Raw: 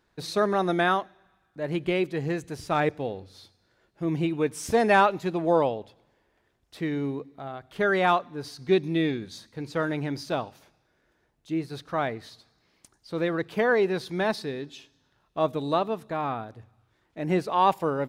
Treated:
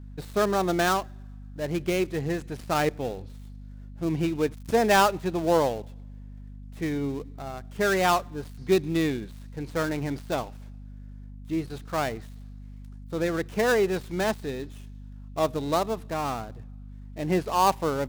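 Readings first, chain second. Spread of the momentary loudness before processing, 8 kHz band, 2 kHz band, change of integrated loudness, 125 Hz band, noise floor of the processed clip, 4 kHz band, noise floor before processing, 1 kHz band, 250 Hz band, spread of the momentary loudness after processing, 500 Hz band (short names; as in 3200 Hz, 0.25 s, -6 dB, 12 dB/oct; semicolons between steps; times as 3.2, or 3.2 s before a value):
15 LU, +6.5 dB, -1.0 dB, 0.0 dB, +1.0 dB, -42 dBFS, +2.0 dB, -70 dBFS, -0.5 dB, 0.0 dB, 22 LU, 0.0 dB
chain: switching dead time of 0.11 ms; hum 50 Hz, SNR 14 dB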